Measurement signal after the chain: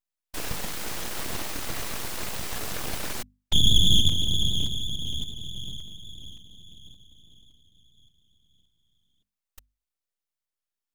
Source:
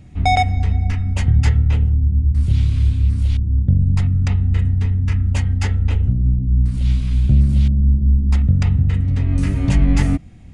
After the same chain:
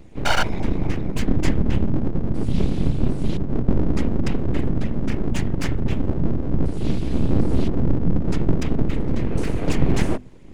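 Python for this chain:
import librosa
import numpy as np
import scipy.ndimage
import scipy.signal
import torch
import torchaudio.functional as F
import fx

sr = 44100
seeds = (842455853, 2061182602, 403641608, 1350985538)

y = fx.whisperise(x, sr, seeds[0])
y = np.abs(y)
y = fx.hum_notches(y, sr, base_hz=50, count=5)
y = y * librosa.db_to_amplitude(-1.5)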